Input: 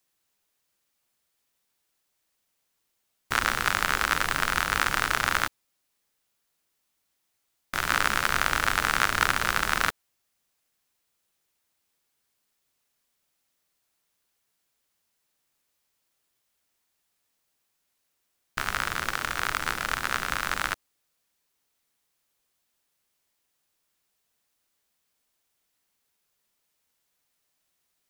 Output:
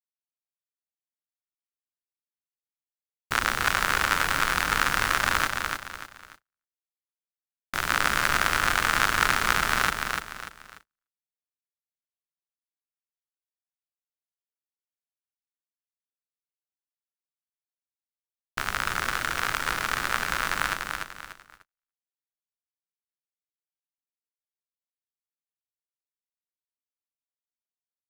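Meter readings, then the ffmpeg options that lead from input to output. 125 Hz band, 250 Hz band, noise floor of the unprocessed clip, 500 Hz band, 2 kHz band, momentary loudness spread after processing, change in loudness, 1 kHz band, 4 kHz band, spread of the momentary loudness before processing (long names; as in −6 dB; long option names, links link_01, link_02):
+1.5 dB, +1.5 dB, −77 dBFS, +1.5 dB, +1.5 dB, 15 LU, +1.0 dB, +1.5 dB, +1.5 dB, 6 LU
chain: -af "aecho=1:1:294|588|882|1176:0.596|0.203|0.0689|0.0234,agate=range=-39dB:threshold=-50dB:ratio=16:detection=peak"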